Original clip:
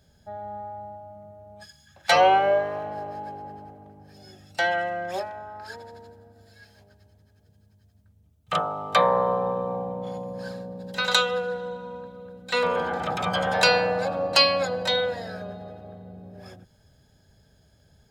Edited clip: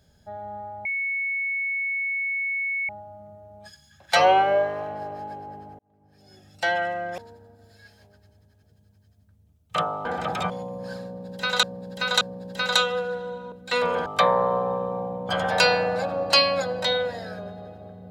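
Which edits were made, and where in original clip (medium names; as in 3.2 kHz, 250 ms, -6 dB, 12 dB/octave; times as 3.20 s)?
0.85 s: add tone 2.21 kHz -24 dBFS 2.04 s
3.75–4.63 s: fade in
5.14–5.95 s: delete
8.82–10.05 s: swap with 12.87–13.32 s
10.60–11.18 s: loop, 3 plays
11.91–12.33 s: delete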